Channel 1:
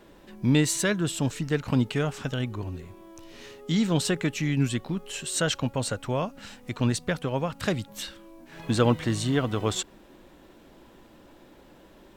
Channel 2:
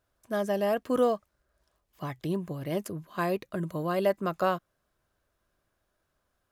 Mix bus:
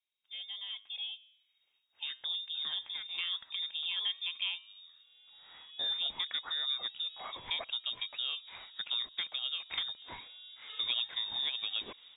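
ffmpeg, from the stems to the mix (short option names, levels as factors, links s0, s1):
-filter_complex "[0:a]adelay=2100,volume=0.631[s0];[1:a]acontrast=29,flanger=delay=7.1:depth=2.8:regen=-89:speed=0.52:shape=triangular,volume=0.708,afade=t=in:st=1.19:d=0.32:silence=0.237137,asplit=2[s1][s2];[s2]apad=whole_len=633699[s3];[s0][s3]sidechaincompress=threshold=0.00631:ratio=8:attack=16:release=982[s4];[s4][s1]amix=inputs=2:normalize=0,lowpass=f=3200:t=q:w=0.5098,lowpass=f=3200:t=q:w=0.6013,lowpass=f=3200:t=q:w=0.9,lowpass=f=3200:t=q:w=2.563,afreqshift=-3800,acompressor=threshold=0.0141:ratio=2"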